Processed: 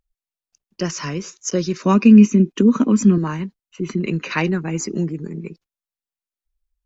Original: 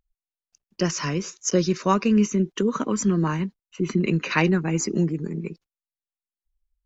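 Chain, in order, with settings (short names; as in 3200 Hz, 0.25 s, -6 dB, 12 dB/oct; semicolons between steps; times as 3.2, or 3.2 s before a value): 1.84–3.18 small resonant body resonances 240/2500 Hz, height 13 dB, ringing for 30 ms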